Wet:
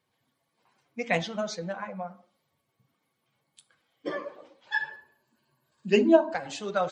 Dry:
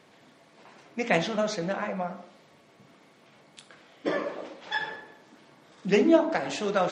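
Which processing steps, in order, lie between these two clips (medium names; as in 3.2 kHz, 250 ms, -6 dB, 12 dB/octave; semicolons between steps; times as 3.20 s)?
expander on every frequency bin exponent 1.5; 4.67–6.34 s: rippled EQ curve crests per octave 1.4, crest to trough 10 dB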